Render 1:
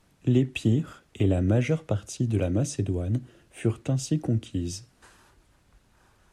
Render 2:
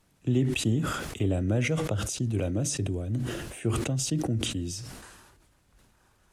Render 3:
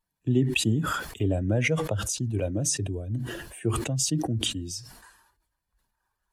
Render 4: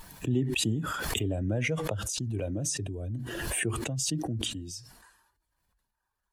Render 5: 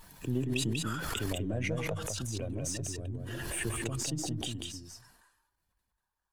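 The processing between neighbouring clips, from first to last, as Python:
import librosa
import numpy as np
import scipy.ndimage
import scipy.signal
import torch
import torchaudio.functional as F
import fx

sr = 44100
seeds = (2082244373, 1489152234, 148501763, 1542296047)

y1 = fx.high_shelf(x, sr, hz=7700.0, db=6.0)
y1 = fx.sustainer(y1, sr, db_per_s=38.0)
y1 = F.gain(torch.from_numpy(y1), -4.0).numpy()
y2 = fx.bin_expand(y1, sr, power=1.5)
y2 = fx.low_shelf(y2, sr, hz=390.0, db=-4.5)
y2 = F.gain(torch.from_numpy(y2), 6.5).numpy()
y3 = fx.pre_swell(y2, sr, db_per_s=27.0)
y3 = F.gain(torch.from_numpy(y3), -5.5).numpy()
y4 = np.where(y3 < 0.0, 10.0 ** (-3.0 / 20.0) * y3, y3)
y4 = y4 + 10.0 ** (-3.5 / 20.0) * np.pad(y4, (int(190 * sr / 1000.0), 0))[:len(y4)]
y4 = F.gain(torch.from_numpy(y4), -4.0).numpy()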